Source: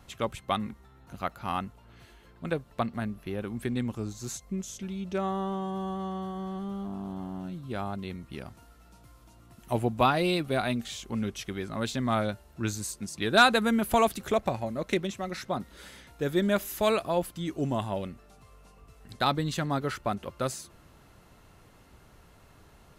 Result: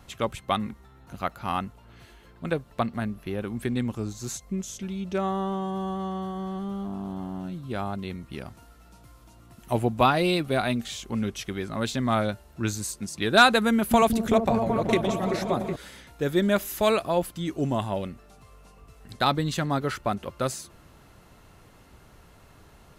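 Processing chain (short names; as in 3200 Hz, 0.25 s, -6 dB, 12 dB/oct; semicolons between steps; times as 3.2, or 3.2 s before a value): 13.72–15.76 repeats that get brighter 0.189 s, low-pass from 200 Hz, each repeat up 1 oct, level 0 dB; gain +3 dB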